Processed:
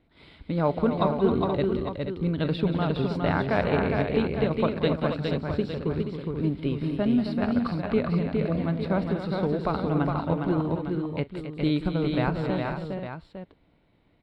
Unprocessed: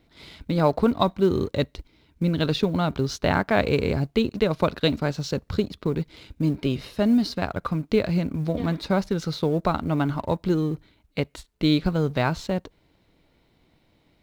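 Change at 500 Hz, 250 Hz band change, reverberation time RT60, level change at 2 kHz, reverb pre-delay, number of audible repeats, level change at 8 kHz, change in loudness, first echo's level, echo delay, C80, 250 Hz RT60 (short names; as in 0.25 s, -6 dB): -1.5 dB, -1.5 dB, none, -3.0 dB, none, 6, under -20 dB, -2.0 dB, -19.5 dB, 41 ms, none, none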